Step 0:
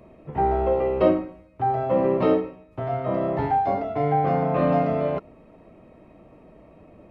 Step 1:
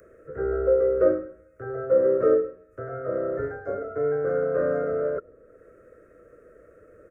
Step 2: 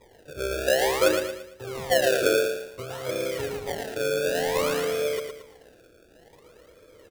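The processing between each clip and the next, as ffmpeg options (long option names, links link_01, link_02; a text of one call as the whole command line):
ffmpeg -i in.wav -filter_complex "[0:a]firequalizer=gain_entry='entry(110,0);entry(160,-9);entry(250,-6);entry(490,14);entry(850,-27);entry(1400,14);entry(2400,-19);entry(3600,-26);entry(6400,-1)':delay=0.05:min_phase=1,acrossover=split=160|440|1700[link_01][link_02][link_03][link_04];[link_04]acompressor=mode=upward:threshold=-48dB:ratio=2.5[link_05];[link_01][link_02][link_03][link_05]amix=inputs=4:normalize=0,volume=-6.5dB" out.wav
ffmpeg -i in.wav -filter_complex "[0:a]acrossover=split=290[link_01][link_02];[link_02]acrusher=samples=30:mix=1:aa=0.000001:lfo=1:lforange=30:lforate=0.55[link_03];[link_01][link_03]amix=inputs=2:normalize=0,aecho=1:1:113|226|339|452|565:0.501|0.19|0.0724|0.0275|0.0105,volume=-1.5dB" out.wav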